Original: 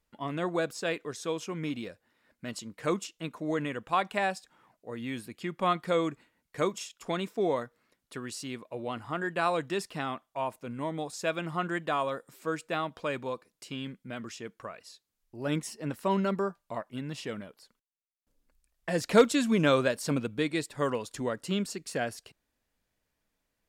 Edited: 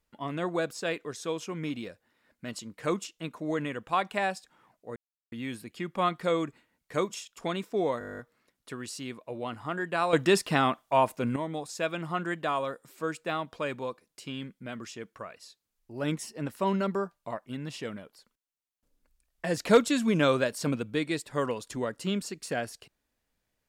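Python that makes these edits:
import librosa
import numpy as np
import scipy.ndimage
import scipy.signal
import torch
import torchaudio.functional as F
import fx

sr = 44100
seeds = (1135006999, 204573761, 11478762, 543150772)

y = fx.edit(x, sr, fx.insert_silence(at_s=4.96, length_s=0.36),
    fx.stutter(start_s=7.63, slice_s=0.02, count=11),
    fx.clip_gain(start_s=9.57, length_s=1.23, db=9.5), tone=tone)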